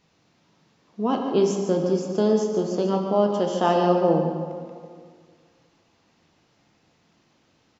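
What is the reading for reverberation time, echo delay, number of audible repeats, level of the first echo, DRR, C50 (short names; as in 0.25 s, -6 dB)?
2.0 s, 0.146 s, 1, -9.5 dB, 1.5 dB, 3.5 dB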